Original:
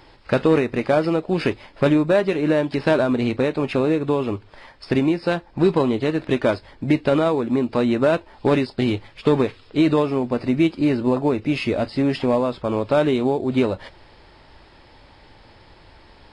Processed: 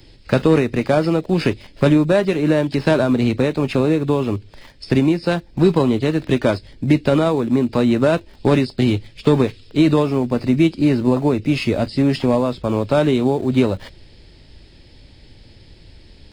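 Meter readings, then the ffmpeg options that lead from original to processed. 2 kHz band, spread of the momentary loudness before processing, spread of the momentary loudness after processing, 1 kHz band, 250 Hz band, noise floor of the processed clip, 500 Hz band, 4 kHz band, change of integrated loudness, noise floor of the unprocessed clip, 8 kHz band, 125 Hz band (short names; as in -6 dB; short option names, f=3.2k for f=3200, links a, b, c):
+1.5 dB, 5 LU, 5 LU, +1.0 dB, +3.5 dB, -47 dBFS, +1.5 dB, +3.5 dB, +3.0 dB, -50 dBFS, n/a, +6.5 dB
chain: -filter_complex "[0:a]bass=f=250:g=6,treble=f=4k:g=6,acrossover=split=170|600|1800[a][b][c][d];[c]aeval=exprs='val(0)*gte(abs(val(0)),0.00631)':c=same[e];[a][b][e][d]amix=inputs=4:normalize=0,volume=1dB"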